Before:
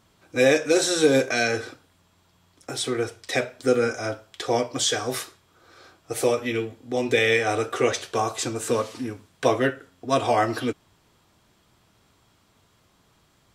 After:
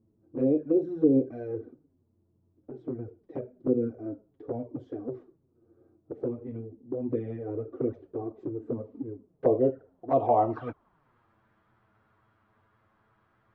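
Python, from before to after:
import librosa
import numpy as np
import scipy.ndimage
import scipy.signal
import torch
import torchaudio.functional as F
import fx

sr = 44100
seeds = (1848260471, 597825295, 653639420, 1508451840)

y = fx.filter_sweep_lowpass(x, sr, from_hz=320.0, to_hz=1500.0, start_s=8.93, end_s=11.18, q=2.0)
y = fx.env_flanger(y, sr, rest_ms=9.4, full_db=-15.0)
y = y * 10.0 ** (-4.0 / 20.0)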